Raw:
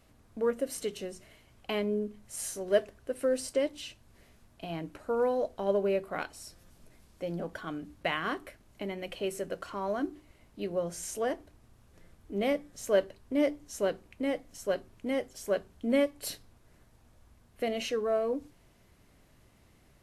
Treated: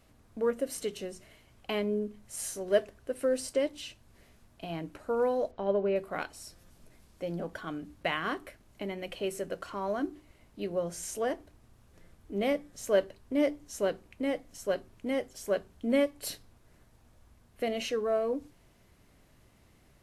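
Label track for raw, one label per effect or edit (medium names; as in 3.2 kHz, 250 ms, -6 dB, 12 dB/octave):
5.510000	5.960000	distance through air 180 m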